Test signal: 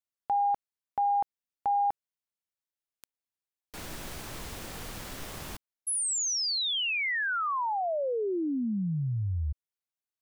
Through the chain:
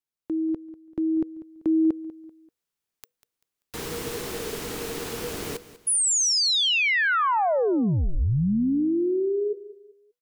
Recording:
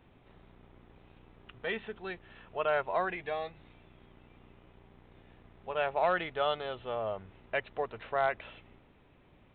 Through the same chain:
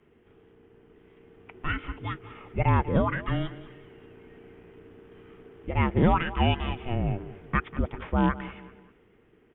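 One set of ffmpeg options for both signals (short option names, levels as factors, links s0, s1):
-af "dynaudnorm=f=440:g=7:m=2.37,afreqshift=-490,aecho=1:1:194|388|582:0.15|0.0539|0.0194"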